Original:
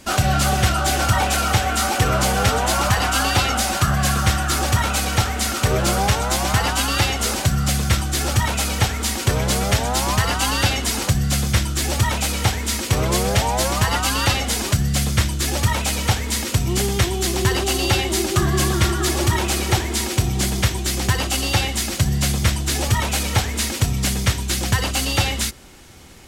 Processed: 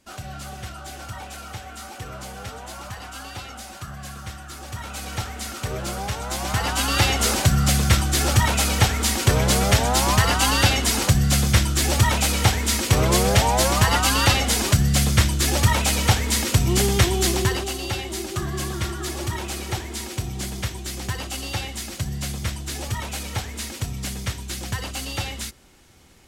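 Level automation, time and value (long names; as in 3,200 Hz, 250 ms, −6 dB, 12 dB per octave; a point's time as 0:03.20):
0:04.59 −17.5 dB
0:05.13 −10 dB
0:06.10 −10 dB
0:07.11 +1 dB
0:17.28 +1 dB
0:17.77 −9 dB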